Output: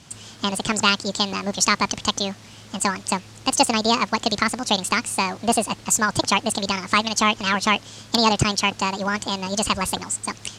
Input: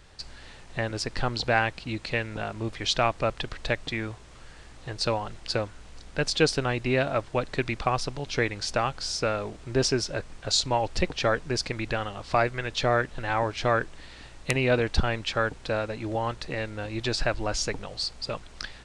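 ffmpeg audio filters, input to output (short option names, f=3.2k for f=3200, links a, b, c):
-af "asetrate=78498,aresample=44100,highpass=140,lowpass=5.6k,bass=f=250:g=6,treble=f=4k:g=10,volume=4.5dB"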